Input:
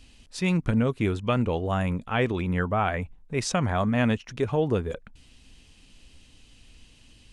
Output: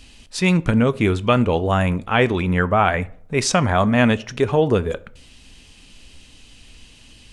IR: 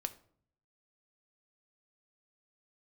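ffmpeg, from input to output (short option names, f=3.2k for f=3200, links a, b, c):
-filter_complex "[0:a]asplit=2[a][b];[1:a]atrim=start_sample=2205,lowshelf=f=290:g=-9[c];[b][c]afir=irnorm=-1:irlink=0,volume=1.5dB[d];[a][d]amix=inputs=2:normalize=0,volume=3dB"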